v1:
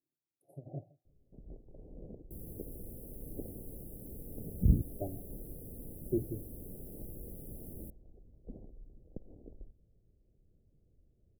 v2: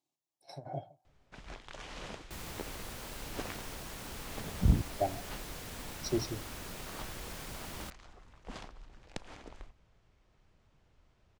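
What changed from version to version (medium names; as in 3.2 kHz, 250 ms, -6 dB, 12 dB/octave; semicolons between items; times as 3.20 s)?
first sound: remove distance through air 260 m; master: remove inverse Chebyshev band-stop 1.1–5.8 kHz, stop band 50 dB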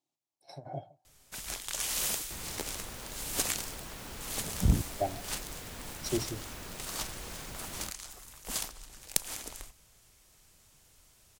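first sound: remove tape spacing loss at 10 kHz 35 dB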